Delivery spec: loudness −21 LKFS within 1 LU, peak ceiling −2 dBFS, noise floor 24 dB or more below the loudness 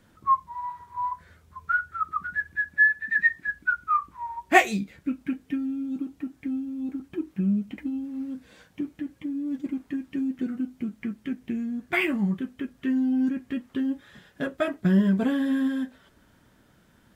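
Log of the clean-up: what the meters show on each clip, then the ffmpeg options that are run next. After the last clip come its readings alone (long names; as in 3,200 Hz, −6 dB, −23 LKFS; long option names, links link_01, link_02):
integrated loudness −27.5 LKFS; sample peak −3.5 dBFS; target loudness −21.0 LKFS
→ -af "volume=6.5dB,alimiter=limit=-2dB:level=0:latency=1"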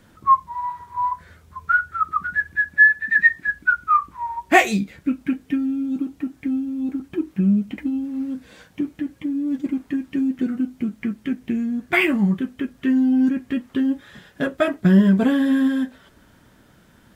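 integrated loudness −21.0 LKFS; sample peak −2.0 dBFS; background noise floor −54 dBFS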